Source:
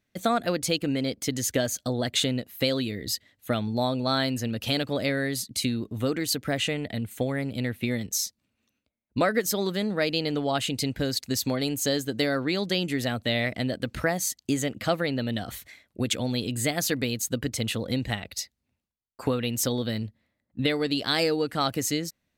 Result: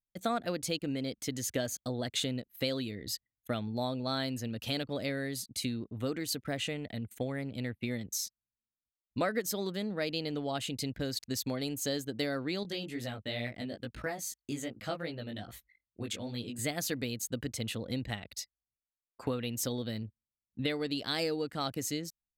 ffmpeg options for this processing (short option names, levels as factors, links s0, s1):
-filter_complex "[0:a]asettb=1/sr,asplit=3[s0][s1][s2];[s0]atrim=end=12.634[s3];[s1]atrim=start=12.63:end=16.59,asetpts=PTS-STARTPTS,afade=t=in:d=0.004:c=qsin,afade=t=out:st=3.956:d=0.004:c=qsin,flanger=delay=17:depth=3.5:speed=2.4[s4];[s2]atrim=start=16.586[s5];[s3][s4]acrossfade=d=0.004:c1=hsin:c2=qsin[s6];[s6][s5]acrossfade=d=0.004:c1=qsin:c2=hsin,anlmdn=0.1,adynamicequalizer=threshold=0.0126:dfrequency=1400:dqfactor=0.71:tfrequency=1400:tqfactor=0.71:attack=5:release=100:ratio=0.375:range=1.5:mode=cutabove:tftype=bell,volume=0.422"